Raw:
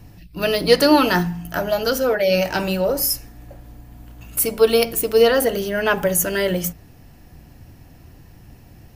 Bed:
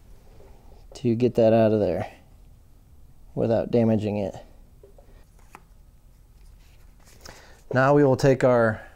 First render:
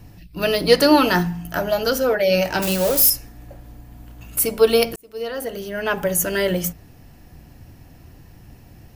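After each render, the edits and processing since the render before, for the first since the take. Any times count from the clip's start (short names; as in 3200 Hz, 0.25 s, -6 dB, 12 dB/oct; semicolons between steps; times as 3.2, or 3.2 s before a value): 2.62–3.1 switching spikes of -13.5 dBFS; 4.96–6.38 fade in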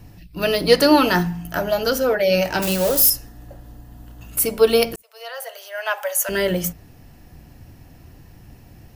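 2.89–4.32 notch 2300 Hz, Q 5.6; 5.02–6.29 steep high-pass 570 Hz 48 dB/oct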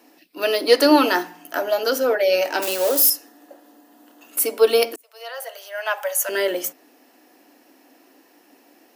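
elliptic high-pass 270 Hz, stop band 50 dB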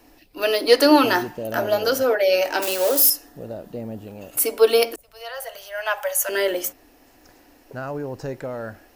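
add bed -12 dB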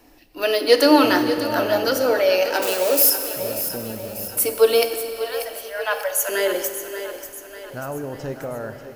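on a send: split-band echo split 350 Hz, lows 0.287 s, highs 0.589 s, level -11 dB; on the sum: Schroeder reverb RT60 2.7 s, combs from 29 ms, DRR 9 dB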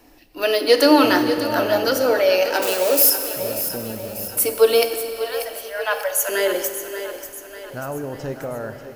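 gain +1 dB; limiter -3 dBFS, peak gain reduction 2.5 dB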